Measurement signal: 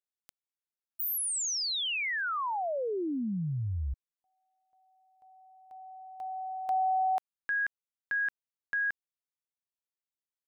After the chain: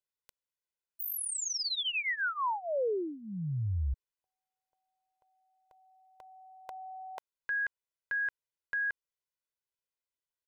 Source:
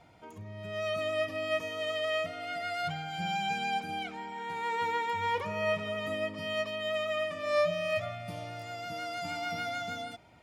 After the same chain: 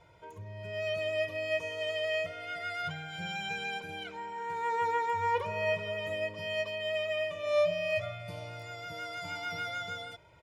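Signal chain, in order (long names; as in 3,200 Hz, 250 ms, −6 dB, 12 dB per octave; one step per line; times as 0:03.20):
high-shelf EQ 5,800 Hz −4.5 dB
comb filter 2 ms, depth 81%
level −2.5 dB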